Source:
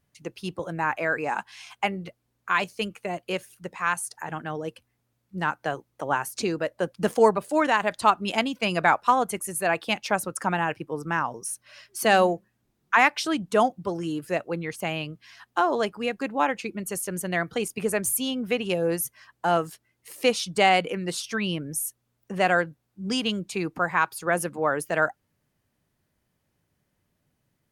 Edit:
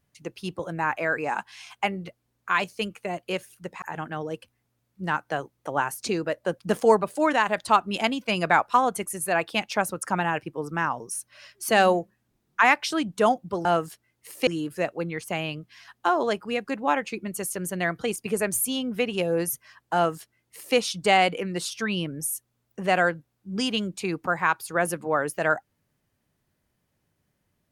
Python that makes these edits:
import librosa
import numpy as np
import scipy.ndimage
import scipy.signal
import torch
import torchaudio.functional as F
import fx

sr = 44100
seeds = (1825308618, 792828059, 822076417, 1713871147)

y = fx.edit(x, sr, fx.cut(start_s=3.82, length_s=0.34),
    fx.duplicate(start_s=19.46, length_s=0.82, to_s=13.99), tone=tone)